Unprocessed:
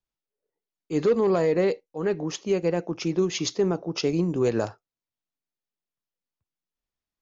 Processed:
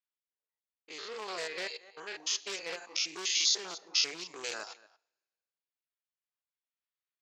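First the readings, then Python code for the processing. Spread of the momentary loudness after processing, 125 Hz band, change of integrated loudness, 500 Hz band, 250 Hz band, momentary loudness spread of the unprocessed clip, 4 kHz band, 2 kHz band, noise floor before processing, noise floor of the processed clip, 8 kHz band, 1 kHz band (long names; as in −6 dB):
16 LU, below −35 dB, −7.0 dB, −21.0 dB, −27.0 dB, 8 LU, +5.5 dB, −0.5 dB, below −85 dBFS, below −85 dBFS, can't be measured, −10.0 dB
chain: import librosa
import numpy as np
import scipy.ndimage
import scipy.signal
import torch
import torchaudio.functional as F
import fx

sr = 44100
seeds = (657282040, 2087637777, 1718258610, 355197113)

y = fx.spec_steps(x, sr, hold_ms=100)
y = y + 10.0 ** (-12.0 / 20.0) * np.pad(y, (int(230 * sr / 1000.0), 0))[:len(y)]
y = fx.rider(y, sr, range_db=10, speed_s=2.0)
y = fx.dereverb_blind(y, sr, rt60_s=0.85)
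y = np.clip(10.0 ** (19.0 / 20.0) * y, -1.0, 1.0) / 10.0 ** (19.0 / 20.0)
y = scipy.signal.sosfilt(scipy.signal.butter(2, 1000.0, 'highpass', fs=sr, output='sos'), y)
y = fx.high_shelf(y, sr, hz=6000.0, db=6.0)
y = fx.env_lowpass(y, sr, base_hz=2000.0, full_db=-37.5)
y = fx.peak_eq(y, sr, hz=4300.0, db=13.0, octaves=2.3)
y = fx.rev_double_slope(y, sr, seeds[0], early_s=0.47, late_s=1.7, knee_db=-22, drr_db=18.5)
y = fx.doppler_dist(y, sr, depth_ms=0.11)
y = y * librosa.db_to_amplitude(-4.0)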